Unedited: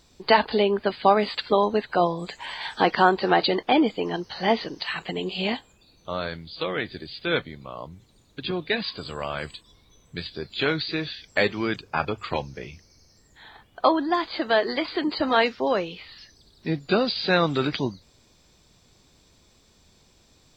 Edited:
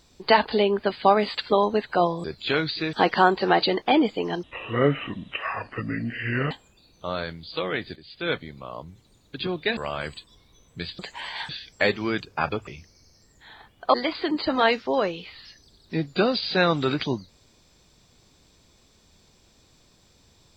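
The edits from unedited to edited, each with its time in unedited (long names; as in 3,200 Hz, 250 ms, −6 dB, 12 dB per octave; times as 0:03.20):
0:02.24–0:02.74: swap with 0:10.36–0:11.05
0:04.24–0:05.55: play speed 63%
0:07.00–0:07.48: fade in, from −12.5 dB
0:08.81–0:09.14: remove
0:12.23–0:12.62: remove
0:13.89–0:14.67: remove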